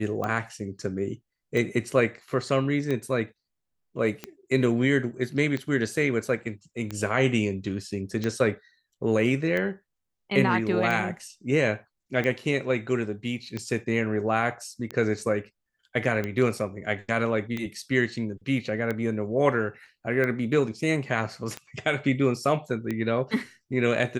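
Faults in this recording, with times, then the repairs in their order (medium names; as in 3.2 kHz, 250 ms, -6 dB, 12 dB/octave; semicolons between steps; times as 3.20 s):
tick 45 rpm -17 dBFS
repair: de-click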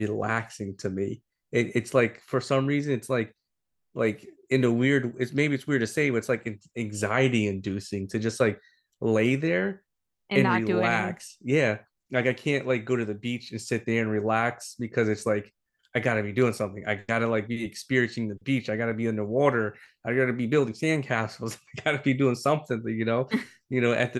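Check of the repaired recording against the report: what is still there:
nothing left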